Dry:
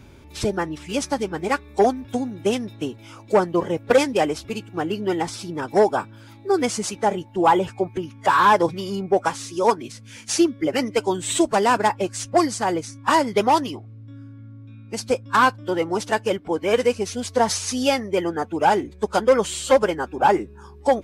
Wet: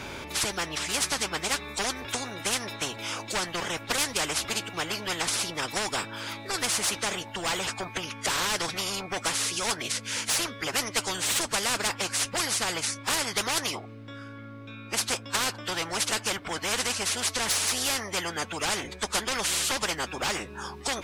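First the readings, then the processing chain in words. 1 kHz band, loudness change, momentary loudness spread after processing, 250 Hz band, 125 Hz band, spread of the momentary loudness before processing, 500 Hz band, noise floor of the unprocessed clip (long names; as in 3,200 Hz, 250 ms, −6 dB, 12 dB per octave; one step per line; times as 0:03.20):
−12.5 dB, −6.0 dB, 7 LU, −14.0 dB, −7.0 dB, 10 LU, −15.5 dB, −44 dBFS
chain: mid-hump overdrive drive 12 dB, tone 6,200 Hz, clips at −5 dBFS
every bin compressed towards the loudest bin 4 to 1
level −6.5 dB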